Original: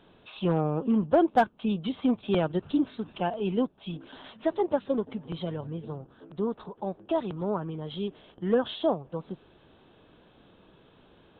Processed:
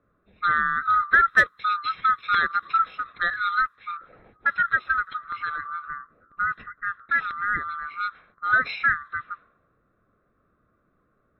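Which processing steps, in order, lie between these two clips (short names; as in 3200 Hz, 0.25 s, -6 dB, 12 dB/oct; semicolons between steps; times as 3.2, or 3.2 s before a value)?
band-swap scrambler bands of 1000 Hz; low-pass opened by the level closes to 390 Hz, open at -25 dBFS; high shelf 2700 Hz +9 dB; gain +1.5 dB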